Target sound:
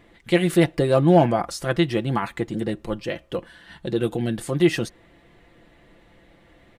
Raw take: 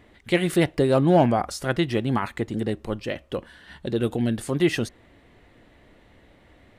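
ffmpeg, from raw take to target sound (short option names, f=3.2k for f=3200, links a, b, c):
-af "aecho=1:1:5.9:0.48"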